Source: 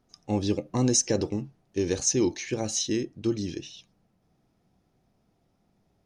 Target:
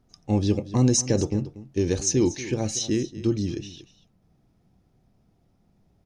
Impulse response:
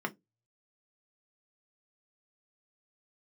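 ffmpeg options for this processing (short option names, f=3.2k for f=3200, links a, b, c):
-filter_complex "[0:a]lowshelf=f=200:g=9.5,asplit=2[a][b];[b]aecho=0:1:237:0.158[c];[a][c]amix=inputs=2:normalize=0"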